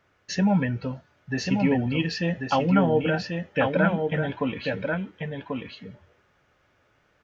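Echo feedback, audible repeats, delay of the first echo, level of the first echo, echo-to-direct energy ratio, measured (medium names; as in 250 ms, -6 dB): no regular repeats, 1, 1089 ms, -4.5 dB, -4.5 dB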